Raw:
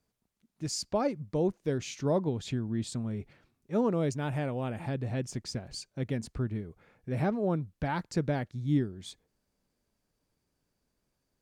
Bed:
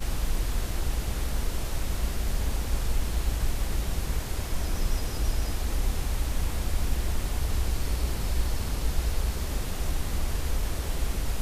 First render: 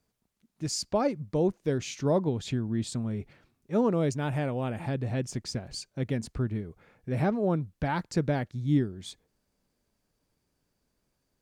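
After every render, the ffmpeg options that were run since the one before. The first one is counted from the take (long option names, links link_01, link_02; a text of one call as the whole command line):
ffmpeg -i in.wav -af "volume=2.5dB" out.wav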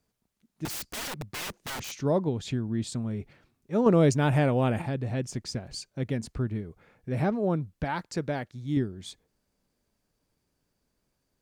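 ffmpeg -i in.wav -filter_complex "[0:a]asettb=1/sr,asplit=3[link_01][link_02][link_03];[link_01]atrim=end=0.654[link_04];[link_02]atrim=start=0.65:end=1.92,asetpts=PTS-STARTPTS,afade=type=in:duration=0.004:curve=qsin,afade=type=out:start_time=1.266:duration=0.004:curve=qsin,aeval=exprs='(mod(33.5*val(0)+1,2)-1)/33.5':channel_layout=same[link_05];[link_03]atrim=start=1.916[link_06];[link_04][link_05]acrossfade=duration=0.004:curve1=hsin:curve2=qsin[link_07];[link_07][link_06]acrossfade=duration=0.004:curve1=qsin:curve2=hsin,asettb=1/sr,asplit=3[link_08][link_09][link_10];[link_08]atrim=end=3.864[link_11];[link_09]atrim=start=3.86:end=4.82,asetpts=PTS-STARTPTS,afade=type=in:duration=0.004:curve=qsin,afade=type=out:start_time=0.956:duration=0.004:curve=qsin,acontrast=65[link_12];[link_10]atrim=start=4.816[link_13];[link_11][link_12]acrossfade=duration=0.004:curve1=hsin:curve2=qsin[link_14];[link_14][link_13]acrossfade=duration=0.004:curve1=qsin:curve2=hsin,asettb=1/sr,asplit=3[link_15][link_16][link_17];[link_15]atrim=end=7.844[link_18];[link_16]atrim=start=7.84:end=8.77,asetpts=PTS-STARTPTS,afade=type=in:duration=0.004:curve=qsin,afade=type=out:start_time=0.926:duration=0.004:curve=qsin,lowshelf=frequency=280:gain=-7.5[link_19];[link_17]atrim=start=8.766[link_20];[link_18][link_19]acrossfade=duration=0.004:curve1=hsin:curve2=qsin[link_21];[link_21][link_20]acrossfade=duration=0.004:curve1=qsin:curve2=hsin" out.wav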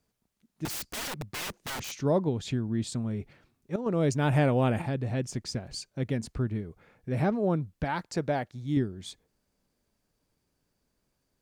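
ffmpeg -i in.wav -filter_complex "[0:a]asettb=1/sr,asplit=3[link_01][link_02][link_03];[link_01]atrim=end=8.084[link_04];[link_02]atrim=start=8.08:end=8.63,asetpts=PTS-STARTPTS,afade=type=in:duration=0.004:curve=qsin,afade=type=out:start_time=0.546:duration=0.004:curve=qsin,equalizer=frequency=720:width_type=o:width=0.7:gain=5.5[link_05];[link_03]atrim=start=8.626[link_06];[link_04][link_05]acrossfade=duration=0.004:curve1=hsin:curve2=qsin[link_07];[link_07][link_06]acrossfade=duration=0.004:curve1=qsin:curve2=hsin,asplit=2[link_08][link_09];[link_08]atrim=end=3.76,asetpts=PTS-STARTPTS,afade=type=out:start_time=3.756:duration=0.004:curve=hsin:silence=0.211349[link_10];[link_09]atrim=start=3.76,asetpts=PTS-STARTPTS,afade=type=in:duration=0.63:silence=0.211349[link_11];[link_10][link_11]concat=n=2:v=0:a=1" out.wav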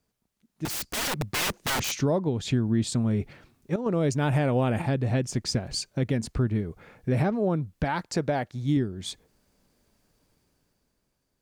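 ffmpeg -i in.wav -af "dynaudnorm=framelen=110:gausssize=17:maxgain=9dB,alimiter=limit=-16dB:level=0:latency=1:release=453" out.wav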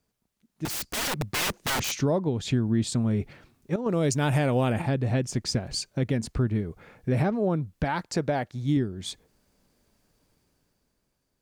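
ffmpeg -i in.wav -filter_complex "[0:a]asettb=1/sr,asplit=3[link_01][link_02][link_03];[link_01]atrim=end=3.894[link_04];[link_02]atrim=start=3.89:end=4.73,asetpts=PTS-STARTPTS,afade=type=in:duration=0.004:curve=qsin,afade=type=out:start_time=0.836:duration=0.004:curve=qsin,highshelf=frequency=3600:gain=8.5[link_05];[link_03]atrim=start=4.726[link_06];[link_04][link_05]acrossfade=duration=0.004:curve1=hsin:curve2=qsin[link_07];[link_07][link_06]acrossfade=duration=0.004:curve1=qsin:curve2=hsin" out.wav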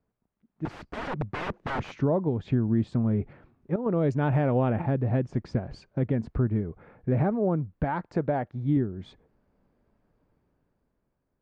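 ffmpeg -i in.wav -af "lowpass=1400" out.wav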